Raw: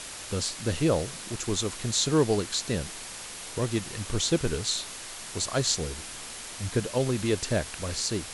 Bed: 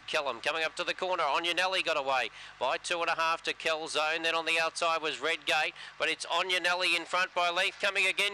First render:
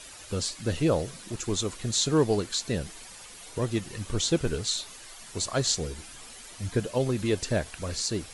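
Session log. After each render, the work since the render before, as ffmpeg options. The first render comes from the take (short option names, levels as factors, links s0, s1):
-af "afftdn=nr=10:nf=-41"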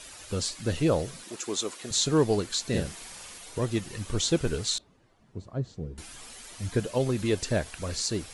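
-filter_complex "[0:a]asettb=1/sr,asplit=3[s0][s1][s2];[s0]atrim=end=1.244[s3];[s1]atrim=start=1.24:end=1.91,asetpts=PTS-STARTPTS,afade=t=in:d=0.004:c=qsin,afade=t=out:st=0.666:d=0.004:c=qsin,highpass=310[s4];[s2]atrim=start=1.906[s5];[s3][s4]acrossfade=d=0.004:c1=hsin:c2=qsin[s6];[s6][s5]acrossfade=d=0.004:c1=qsin:c2=hsin,asettb=1/sr,asplit=3[s7][s8][s9];[s7]atrim=end=2.684[s10];[s8]atrim=start=2.68:end=3.38,asetpts=PTS-STARTPTS,afade=t=in:d=0.004:c=qsin,afade=t=out:st=0.696:d=0.004:c=qsin,asplit=2[s11][s12];[s12]adelay=46,volume=0.75[s13];[s11][s13]amix=inputs=2:normalize=0,atrim=end_sample=30870[s14];[s9]atrim=start=3.376[s15];[s10][s14]acrossfade=d=0.004:c1=hsin:c2=qsin[s16];[s16][s15]acrossfade=d=0.004:c1=qsin:c2=hsin,asettb=1/sr,asplit=3[s17][s18][s19];[s17]atrim=end=4.784[s20];[s18]atrim=start=4.78:end=5.98,asetpts=PTS-STARTPTS,afade=t=in:d=0.004:c=qsin,afade=t=out:st=1.196:d=0.004:c=qsin,bandpass=f=140:t=q:w=0.79[s21];[s19]atrim=start=5.976[s22];[s20][s21]acrossfade=d=0.004:c1=hsin:c2=qsin[s23];[s23][s22]acrossfade=d=0.004:c1=qsin:c2=hsin"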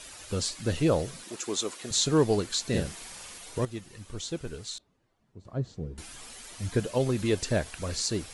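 -filter_complex "[0:a]asplit=3[s0][s1][s2];[s0]atrim=end=3.652[s3];[s1]atrim=start=3.648:end=5.452,asetpts=PTS-STARTPTS,volume=0.335[s4];[s2]atrim=start=5.448[s5];[s3][s4]acrossfade=d=0.004:c1=hsin:c2=hsin[s6];[s6][s5]acrossfade=d=0.004:c1=hsin:c2=hsin"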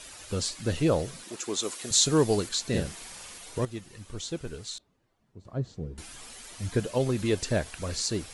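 -filter_complex "[0:a]asettb=1/sr,asplit=3[s0][s1][s2];[s0]atrim=end=1.634[s3];[s1]atrim=start=1.63:end=2.49,asetpts=PTS-STARTPTS,afade=t=in:d=0.004:c=qsin,afade=t=out:st=0.856:d=0.004:c=qsin,highshelf=f=5300:g=8[s4];[s2]atrim=start=2.486[s5];[s3][s4]acrossfade=d=0.004:c1=hsin:c2=qsin[s6];[s6][s5]acrossfade=d=0.004:c1=qsin:c2=hsin"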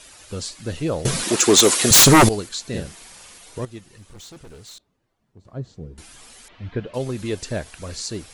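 -filter_complex "[0:a]asettb=1/sr,asplit=3[s0][s1][s2];[s0]atrim=end=1.054[s3];[s1]atrim=start=1.05:end=2.29,asetpts=PTS-STARTPTS,afade=t=in:d=0.004:c=qsin,afade=t=out:st=1.236:d=0.004:c=qsin,aeval=exprs='0.473*sin(PI/2*6.31*val(0)/0.473)':c=same[s4];[s2]atrim=start=2.286[s5];[s3][s4]acrossfade=d=0.004:c1=hsin:c2=qsin[s6];[s6][s5]acrossfade=d=0.004:c1=qsin:c2=hsin,asettb=1/sr,asplit=3[s7][s8][s9];[s7]atrim=end=3.864[s10];[s8]atrim=start=3.86:end=5.49,asetpts=PTS-STARTPTS,afade=t=in:d=0.004:c=qsin,afade=t=out:st=1.626:d=0.004:c=qsin,asoftclip=type=hard:threshold=0.0112[s11];[s9]atrim=start=5.486[s12];[s10][s11]acrossfade=d=0.004:c1=hsin:c2=qsin[s13];[s13][s12]acrossfade=d=0.004:c1=qsin:c2=hsin,asettb=1/sr,asplit=3[s14][s15][s16];[s14]atrim=end=6.484[s17];[s15]atrim=start=6.48:end=6.94,asetpts=PTS-STARTPTS,afade=t=in:d=0.004:c=qsin,afade=t=out:st=0.456:d=0.004:c=qsin,lowpass=f=3300:w=0.5412,lowpass=f=3300:w=1.3066[s18];[s16]atrim=start=6.936[s19];[s17][s18]acrossfade=d=0.004:c1=hsin:c2=qsin[s20];[s20][s19]acrossfade=d=0.004:c1=qsin:c2=hsin"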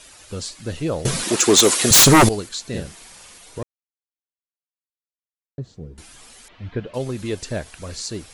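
-filter_complex "[0:a]asplit=3[s0][s1][s2];[s0]atrim=end=3.63,asetpts=PTS-STARTPTS,afade=t=out:st=3.626:d=0.004:c=hsin[s3];[s1]atrim=start=3.63:end=5.58,asetpts=PTS-STARTPTS,volume=0[s4];[s2]atrim=start=5.58,asetpts=PTS-STARTPTS,afade=t=in:d=0.004:c=hsin[s5];[s3][s4][s5]concat=n=3:v=0:a=1"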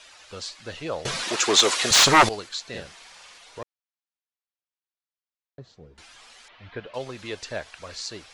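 -filter_complex "[0:a]acrossover=split=550 6100:gain=0.2 1 0.112[s0][s1][s2];[s0][s1][s2]amix=inputs=3:normalize=0"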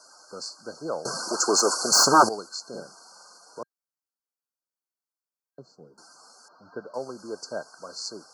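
-af "afftfilt=real='re*(1-between(b*sr/4096,1600,4200))':imag='im*(1-between(b*sr/4096,1600,4200))':win_size=4096:overlap=0.75,highpass=f=170:w=0.5412,highpass=f=170:w=1.3066"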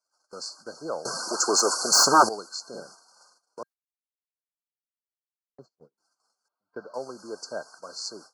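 -af "lowshelf=f=290:g=-5.5,agate=range=0.0251:threshold=0.00355:ratio=16:detection=peak"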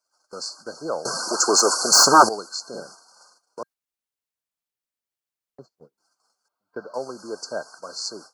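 -af "volume=1.68"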